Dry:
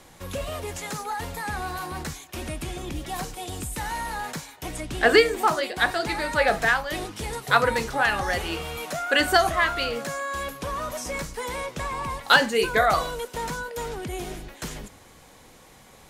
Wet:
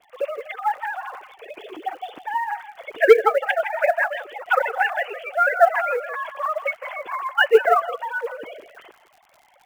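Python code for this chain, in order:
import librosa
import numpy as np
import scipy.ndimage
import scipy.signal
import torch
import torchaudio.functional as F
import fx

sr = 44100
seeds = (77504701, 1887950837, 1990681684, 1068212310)

p1 = fx.sine_speech(x, sr)
p2 = fx.rider(p1, sr, range_db=3, speed_s=0.5)
p3 = p1 + (p2 * 10.0 ** (3.0 / 20.0))
p4 = fx.quant_float(p3, sr, bits=4)
p5 = fx.stretch_vocoder(p4, sr, factor=0.6)
p6 = fx.dmg_crackle(p5, sr, seeds[0], per_s=69.0, level_db=-38.0)
p7 = p6 + fx.echo_single(p6, sr, ms=163, db=-14.0, dry=0)
y = p7 * 10.0 ** (-3.0 / 20.0)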